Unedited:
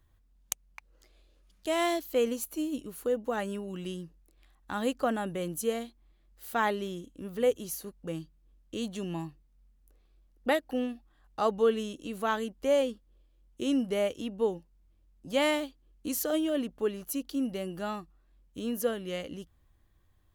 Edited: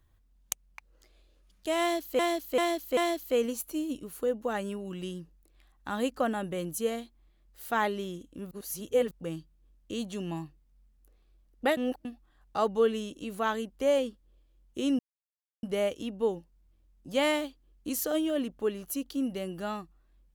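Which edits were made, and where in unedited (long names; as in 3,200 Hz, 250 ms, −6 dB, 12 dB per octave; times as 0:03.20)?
0:01.80–0:02.19: repeat, 4 plays
0:07.34–0:07.94: reverse
0:10.60–0:10.88: reverse
0:13.82: splice in silence 0.64 s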